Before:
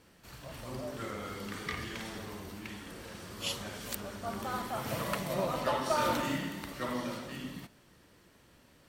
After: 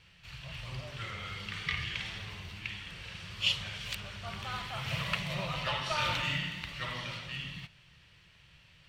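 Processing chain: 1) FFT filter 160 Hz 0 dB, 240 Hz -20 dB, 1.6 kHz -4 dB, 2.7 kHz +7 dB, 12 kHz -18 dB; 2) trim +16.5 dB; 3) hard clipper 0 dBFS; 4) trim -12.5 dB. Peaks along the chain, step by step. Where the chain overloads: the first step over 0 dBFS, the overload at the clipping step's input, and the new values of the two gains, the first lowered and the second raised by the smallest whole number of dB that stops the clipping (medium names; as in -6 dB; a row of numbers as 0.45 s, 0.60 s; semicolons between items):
-18.0 dBFS, -1.5 dBFS, -1.5 dBFS, -14.0 dBFS; nothing clips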